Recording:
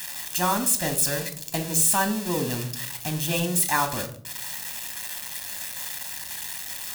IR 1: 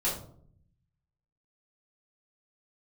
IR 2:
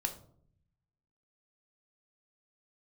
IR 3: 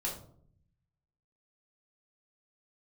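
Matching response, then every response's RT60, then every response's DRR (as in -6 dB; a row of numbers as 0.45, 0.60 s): 2; 0.60, 0.60, 0.60 s; -8.0, 5.5, -3.5 dB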